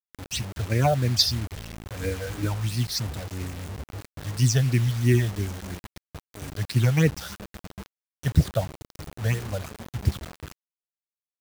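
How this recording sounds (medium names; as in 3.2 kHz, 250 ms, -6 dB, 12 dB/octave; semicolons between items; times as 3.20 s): phasing stages 8, 3 Hz, lowest notch 300–1100 Hz; a quantiser's noise floor 6-bit, dither none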